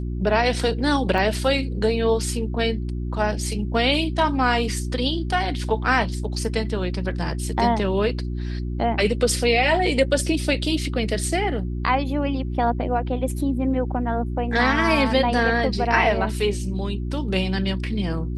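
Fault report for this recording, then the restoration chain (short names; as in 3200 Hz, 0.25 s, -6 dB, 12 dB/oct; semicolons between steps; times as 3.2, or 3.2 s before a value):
hum 60 Hz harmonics 6 -27 dBFS
1.18 gap 2.2 ms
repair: de-hum 60 Hz, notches 6; interpolate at 1.18, 2.2 ms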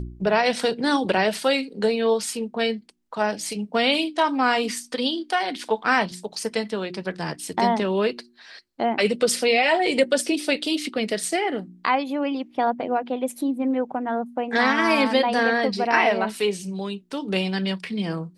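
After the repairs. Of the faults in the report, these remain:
none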